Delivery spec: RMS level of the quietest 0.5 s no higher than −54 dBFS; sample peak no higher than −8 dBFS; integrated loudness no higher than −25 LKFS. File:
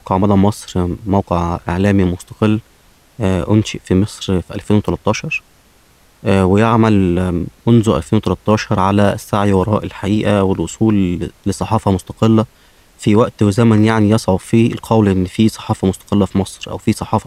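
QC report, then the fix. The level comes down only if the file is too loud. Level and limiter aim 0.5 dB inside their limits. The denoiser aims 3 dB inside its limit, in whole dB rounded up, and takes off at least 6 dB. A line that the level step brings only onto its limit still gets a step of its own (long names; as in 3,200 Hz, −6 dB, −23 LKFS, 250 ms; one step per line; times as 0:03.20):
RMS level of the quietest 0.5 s −50 dBFS: out of spec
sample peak −1.5 dBFS: out of spec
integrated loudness −15.5 LKFS: out of spec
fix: level −10 dB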